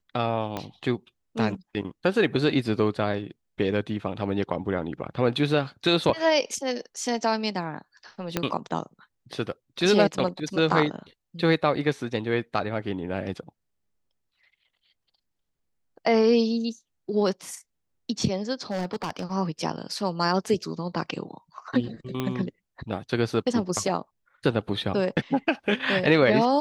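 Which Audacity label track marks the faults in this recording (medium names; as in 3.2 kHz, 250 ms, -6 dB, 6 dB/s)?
0.570000	0.570000	pop -16 dBFS
8.370000	8.370000	pop -9 dBFS
18.710000	19.330000	clipped -24 dBFS
22.200000	22.200000	pop -14 dBFS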